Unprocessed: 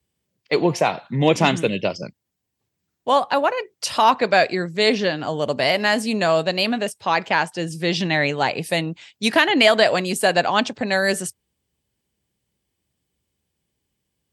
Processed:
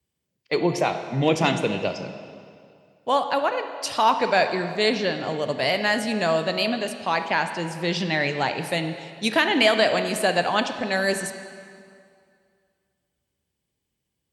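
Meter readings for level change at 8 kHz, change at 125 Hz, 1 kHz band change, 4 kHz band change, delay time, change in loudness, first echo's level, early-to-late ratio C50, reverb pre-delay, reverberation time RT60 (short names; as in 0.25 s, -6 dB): -4.0 dB, -3.0 dB, -3.0 dB, -3.5 dB, none, -3.5 dB, none, 8.5 dB, 20 ms, 2.3 s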